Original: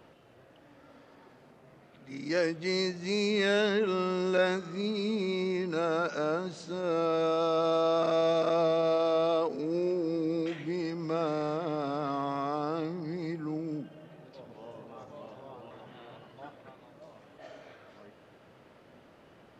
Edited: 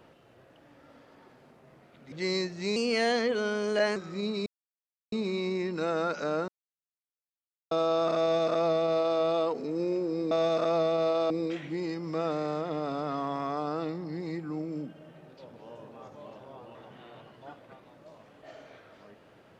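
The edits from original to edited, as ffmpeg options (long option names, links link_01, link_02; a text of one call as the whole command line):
ffmpeg -i in.wav -filter_complex "[0:a]asplit=9[link_01][link_02][link_03][link_04][link_05][link_06][link_07][link_08][link_09];[link_01]atrim=end=2.122[link_10];[link_02]atrim=start=2.558:end=3.204[link_11];[link_03]atrim=start=3.2:end=4.57,asetpts=PTS-STARTPTS,asetrate=50274,aresample=44100,atrim=end_sample=52997,asetpts=PTS-STARTPTS[link_12];[link_04]atrim=start=4.566:end=5.07,asetpts=PTS-STARTPTS,afade=type=out:start_time=0.5:duration=0.004:curve=hsin,apad=pad_dur=0.66[link_13];[link_05]atrim=start=5.07:end=6.43,asetpts=PTS-STARTPTS,afade=type=in:duration=0.004:curve=hsin,afade=type=out:start_time=1.356:duration=0.004:curve=hsin[link_14];[link_06]atrim=start=6.43:end=7.66,asetpts=PTS-STARTPTS,volume=0[link_15];[link_07]atrim=start=7.66:end=10.262,asetpts=PTS-STARTPTS,afade=type=in:duration=0.004:curve=hsin[link_16];[link_08]atrim=start=8.158:end=9.152[link_17];[link_09]atrim=start=10.258[link_18];[link_10][link_11]acrossfade=duration=0.004:curve1=hsin:curve2=hsin[link_19];[link_19][link_12]acrossfade=duration=0.004:curve1=hsin:curve2=hsin[link_20];[link_13][link_14][link_15][link_16]concat=n=4:v=0:a=1[link_21];[link_20][link_21]acrossfade=duration=0.004:curve1=hsin:curve2=hsin[link_22];[link_22][link_17]acrossfade=duration=0.004:curve1=hsin:curve2=hsin[link_23];[link_23][link_18]acrossfade=duration=0.004:curve1=hsin:curve2=hsin" out.wav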